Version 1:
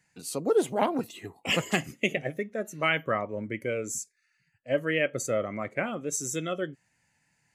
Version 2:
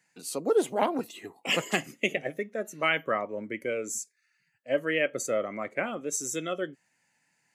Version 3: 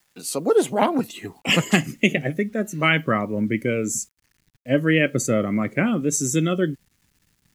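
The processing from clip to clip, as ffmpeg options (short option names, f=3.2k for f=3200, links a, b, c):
-af "highpass=220"
-af "acrusher=bits=10:mix=0:aa=0.000001,asubboost=boost=9:cutoff=210,volume=7.5dB"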